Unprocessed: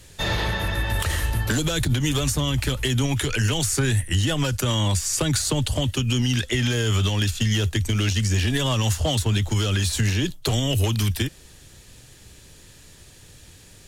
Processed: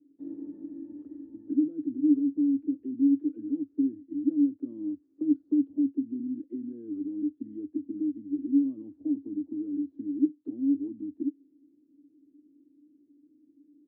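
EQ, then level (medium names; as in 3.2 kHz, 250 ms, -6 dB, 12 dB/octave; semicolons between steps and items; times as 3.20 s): Butterworth band-pass 290 Hz, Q 7.8; +8.0 dB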